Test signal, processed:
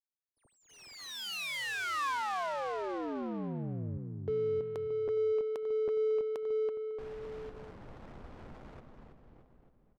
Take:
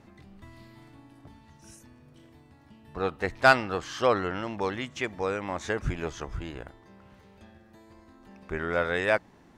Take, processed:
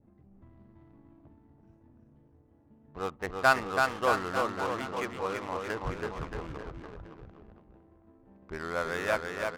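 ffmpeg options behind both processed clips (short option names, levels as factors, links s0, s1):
-af "adynamicequalizer=threshold=0.00398:dfrequency=1100:dqfactor=2.4:tfrequency=1100:tqfactor=2.4:attack=5:release=100:ratio=0.375:range=3:mode=boostabove:tftype=bell,aecho=1:1:330|627|894.3|1135|1351:0.631|0.398|0.251|0.158|0.1,adynamicsmooth=sensitivity=6:basefreq=580,volume=0.473"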